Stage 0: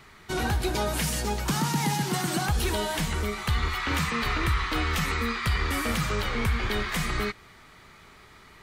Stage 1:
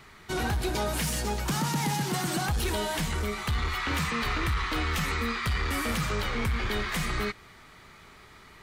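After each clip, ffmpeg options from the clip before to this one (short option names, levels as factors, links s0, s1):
-af "asoftclip=type=tanh:threshold=0.0841"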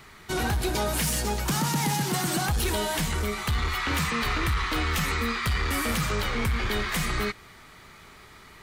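-af "highshelf=f=8000:g=5,volume=1.26"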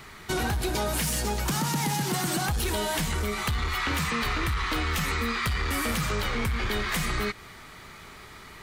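-af "acompressor=threshold=0.0355:ratio=4,volume=1.5"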